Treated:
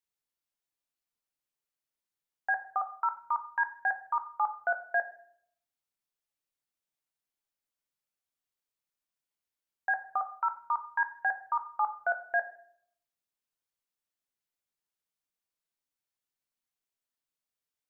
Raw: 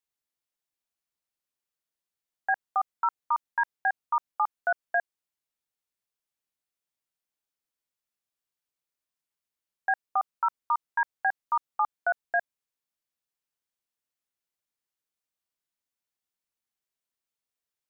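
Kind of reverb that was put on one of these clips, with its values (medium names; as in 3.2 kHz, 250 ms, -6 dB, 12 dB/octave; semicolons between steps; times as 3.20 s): simulated room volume 110 m³, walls mixed, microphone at 0.32 m; trim -3 dB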